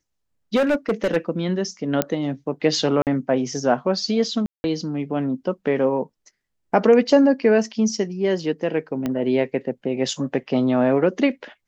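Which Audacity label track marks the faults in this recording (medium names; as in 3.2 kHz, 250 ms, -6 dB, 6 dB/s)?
0.550000	1.170000	clipped -15.5 dBFS
2.020000	2.020000	pop -4 dBFS
3.020000	3.070000	dropout 48 ms
4.460000	4.640000	dropout 181 ms
9.060000	9.060000	pop -12 dBFS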